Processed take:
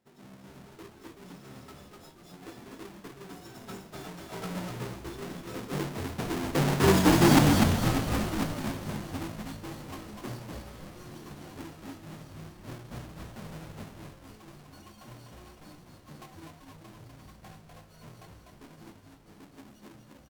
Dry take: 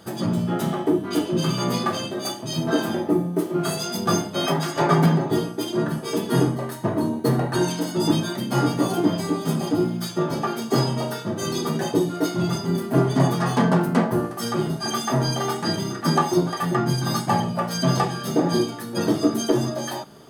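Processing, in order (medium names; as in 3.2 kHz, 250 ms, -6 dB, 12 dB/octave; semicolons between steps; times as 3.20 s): square wave that keeps the level; Doppler pass-by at 7.13 s, 33 m/s, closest 5.9 m; frequency-shifting echo 248 ms, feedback 40%, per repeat -58 Hz, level -3.5 dB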